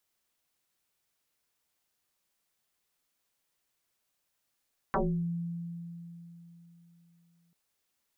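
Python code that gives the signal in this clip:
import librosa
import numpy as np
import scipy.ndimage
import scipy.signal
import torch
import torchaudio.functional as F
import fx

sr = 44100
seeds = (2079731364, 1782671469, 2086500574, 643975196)

y = fx.fm2(sr, length_s=2.59, level_db=-24, carrier_hz=170.0, ratio=1.15, index=8.1, index_s=0.39, decay_s=3.58, shape='exponential')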